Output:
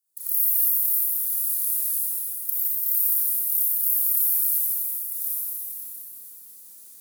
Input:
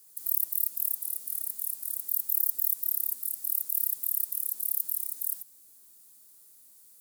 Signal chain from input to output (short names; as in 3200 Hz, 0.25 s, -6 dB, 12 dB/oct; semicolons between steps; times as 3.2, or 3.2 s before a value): step gate ".xxx.x.xxxxx...x" 91 bpm -24 dB; Schroeder reverb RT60 3.4 s, combs from 27 ms, DRR -9 dB